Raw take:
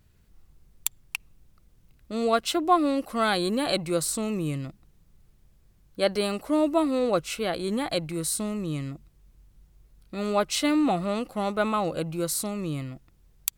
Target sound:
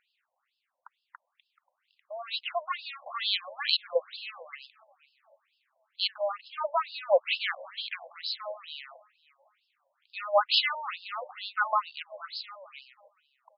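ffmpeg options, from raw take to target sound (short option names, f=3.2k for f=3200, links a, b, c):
-filter_complex "[0:a]asplit=2[a][b];[b]asoftclip=type=hard:threshold=-22dB,volume=-5dB[c];[a][c]amix=inputs=2:normalize=0,highshelf=f=6.9k:g=-8.5,dynaudnorm=f=100:g=31:m=6dB,equalizer=f=820:t=o:w=1.6:g=-5,asplit=2[d][e];[e]adelay=532,lowpass=f=2.2k:p=1,volume=-21dB,asplit=2[f][g];[g]adelay=532,lowpass=f=2.2k:p=1,volume=0.37,asplit=2[h][i];[i]adelay=532,lowpass=f=2.2k:p=1,volume=0.37[j];[f][h][j]amix=inputs=3:normalize=0[k];[d][k]amix=inputs=2:normalize=0,afftfilt=real='re*between(b*sr/1024,710*pow(3800/710,0.5+0.5*sin(2*PI*2.2*pts/sr))/1.41,710*pow(3800/710,0.5+0.5*sin(2*PI*2.2*pts/sr))*1.41)':imag='im*between(b*sr/1024,710*pow(3800/710,0.5+0.5*sin(2*PI*2.2*pts/sr))/1.41,710*pow(3800/710,0.5+0.5*sin(2*PI*2.2*pts/sr))*1.41)':win_size=1024:overlap=0.75"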